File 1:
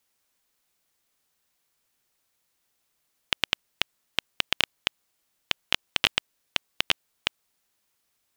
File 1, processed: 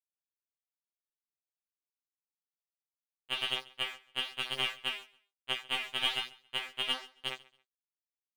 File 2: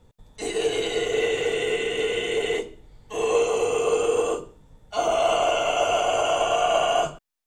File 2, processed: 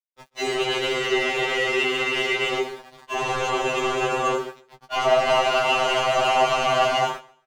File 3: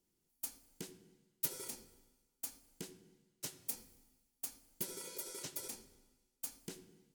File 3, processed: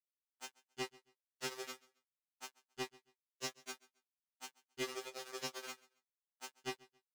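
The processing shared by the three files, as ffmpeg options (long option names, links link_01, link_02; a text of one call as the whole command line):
ffmpeg -i in.wav -filter_complex "[0:a]lowpass=frequency=7000:width=0.5412,lowpass=frequency=7000:width=1.3066,bandreject=frequency=60:width_type=h:width=6,bandreject=frequency=120:width_type=h:width=6,acontrast=51,flanger=delay=7.5:depth=5.2:regen=87:speed=1.1:shape=sinusoidal,aeval=exprs='val(0)*gte(abs(val(0)),0.00841)':channel_layout=same,asplit=2[link_01][link_02];[link_02]highpass=frequency=720:poles=1,volume=25dB,asoftclip=type=tanh:threshold=-4.5dB[link_03];[link_01][link_03]amix=inputs=2:normalize=0,lowpass=frequency=1900:poles=1,volume=-6dB,asplit=2[link_04][link_05];[link_05]adelay=13,volume=-7dB[link_06];[link_04][link_06]amix=inputs=2:normalize=0,aecho=1:1:137|274:0.075|0.0195,afftfilt=real='re*2.45*eq(mod(b,6),0)':imag='im*2.45*eq(mod(b,6),0)':win_size=2048:overlap=0.75,volume=-3.5dB" out.wav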